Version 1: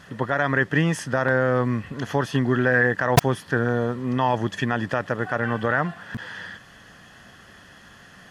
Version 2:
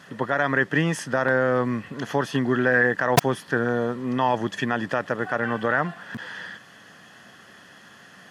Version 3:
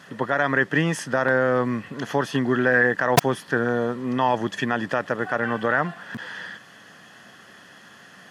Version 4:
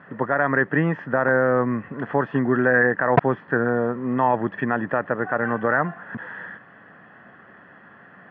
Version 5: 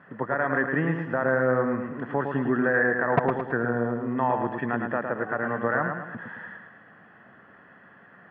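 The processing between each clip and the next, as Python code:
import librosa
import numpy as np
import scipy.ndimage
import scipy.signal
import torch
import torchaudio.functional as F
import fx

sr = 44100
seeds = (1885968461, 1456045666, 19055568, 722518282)

y1 = scipy.signal.sosfilt(scipy.signal.butter(2, 160.0, 'highpass', fs=sr, output='sos'), x)
y2 = fx.low_shelf(y1, sr, hz=71.0, db=-5.5)
y2 = y2 * 10.0 ** (1.0 / 20.0)
y3 = scipy.signal.sosfilt(scipy.signal.butter(4, 1900.0, 'lowpass', fs=sr, output='sos'), y2)
y3 = y3 * 10.0 ** (1.5 / 20.0)
y4 = fx.echo_feedback(y3, sr, ms=109, feedback_pct=45, wet_db=-5.5)
y4 = y4 * 10.0 ** (-5.5 / 20.0)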